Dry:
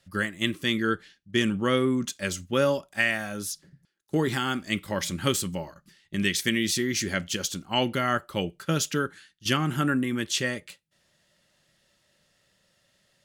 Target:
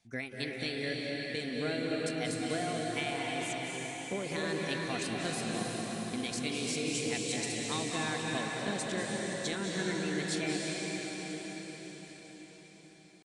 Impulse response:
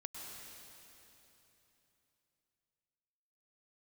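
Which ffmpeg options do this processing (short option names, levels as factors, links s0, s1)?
-filter_complex "[0:a]acompressor=threshold=0.0501:ratio=6,asetrate=55563,aresample=44100,atempo=0.793701[s0];[1:a]atrim=start_sample=2205,asetrate=23373,aresample=44100[s1];[s0][s1]afir=irnorm=-1:irlink=0,aresample=22050,aresample=44100,volume=0.562"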